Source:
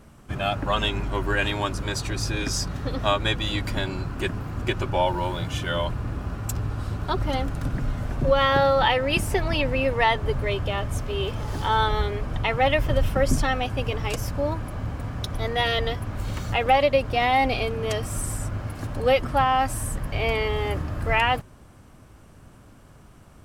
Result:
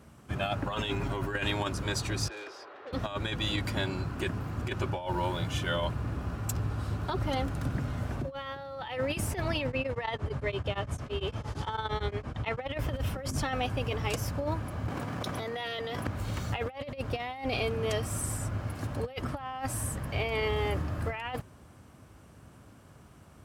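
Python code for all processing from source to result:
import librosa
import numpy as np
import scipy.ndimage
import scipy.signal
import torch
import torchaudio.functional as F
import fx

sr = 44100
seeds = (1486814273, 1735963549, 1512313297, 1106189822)

y = fx.chain(x, sr, fx.quant_float(bits=6),
    fx.comb(ms=7.3, depth=0.32),
    fx.over_compress(threshold_db=-28.0, ratio=-1.0), at=(0.68, 1.35))
y = fx.chain(y, sr, fx.steep_highpass(hz=360.0, slope=48),
    fx.air_absorb(metres=380.0),
    fx.tube_stage(drive_db=35.0, bias=0.3), at=(2.28, 2.93))
y = fx.chain(y, sr, fx.lowpass(hz=8900.0, slope=12),
    fx.tremolo_abs(hz=8.8), at=(9.67, 12.79))
y = fx.chain(y, sr, fx.highpass(hz=160.0, slope=12),
    fx.env_flatten(amount_pct=100), at=(14.88, 16.07))
y = scipy.signal.sosfilt(scipy.signal.butter(4, 56.0, 'highpass', fs=sr, output='sos'), y)
y = fx.over_compress(y, sr, threshold_db=-25.0, ratio=-0.5)
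y = y * 10.0 ** (-5.5 / 20.0)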